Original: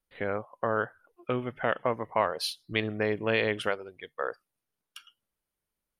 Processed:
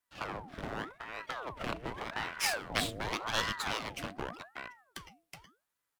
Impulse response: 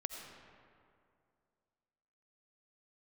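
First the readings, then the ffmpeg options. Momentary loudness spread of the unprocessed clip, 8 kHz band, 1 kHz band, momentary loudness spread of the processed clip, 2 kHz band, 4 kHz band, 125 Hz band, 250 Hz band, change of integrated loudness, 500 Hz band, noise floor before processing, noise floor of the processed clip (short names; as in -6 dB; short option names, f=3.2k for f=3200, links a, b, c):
10 LU, +6.5 dB, -4.5 dB, 17 LU, -4.0 dB, 0.0 dB, -6.5 dB, -8.0 dB, -6.0 dB, -12.5 dB, under -85 dBFS, under -85 dBFS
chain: -filter_complex "[0:a]highpass=f=160:w=0.5412,highpass=f=160:w=1.3066,bandreject=f=252.7:t=h:w=4,bandreject=f=505.4:t=h:w=4,bandreject=f=758.1:t=h:w=4,bandreject=f=1.0108k:t=h:w=4,acrossover=split=2100[a][b];[a]acompressor=threshold=-40dB:ratio=6[c];[c][b]amix=inputs=2:normalize=0,aeval=exprs='max(val(0),0)':c=same,afreqshift=-500,asplit=2[d][e];[e]aecho=0:1:371:0.562[f];[d][f]amix=inputs=2:normalize=0,aeval=exprs='val(0)*sin(2*PI*840*n/s+840*0.8/0.86*sin(2*PI*0.86*n/s))':c=same,volume=8.5dB"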